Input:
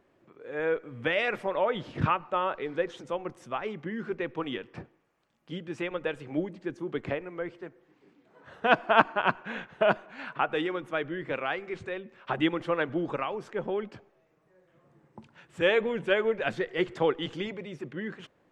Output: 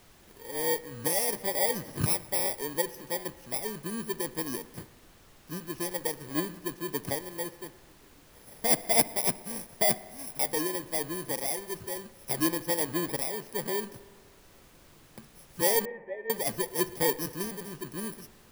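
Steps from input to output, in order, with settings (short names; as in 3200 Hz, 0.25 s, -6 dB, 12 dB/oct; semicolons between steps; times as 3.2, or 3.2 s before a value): FFT order left unsorted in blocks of 32 samples; in parallel at -9.5 dB: wrapped overs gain 16 dB; on the sum: added noise pink -54 dBFS; 15.85–16.3 vocal tract filter e; on a send: analogue delay 62 ms, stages 1024, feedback 79%, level -21 dB; on the sum: gain -3 dB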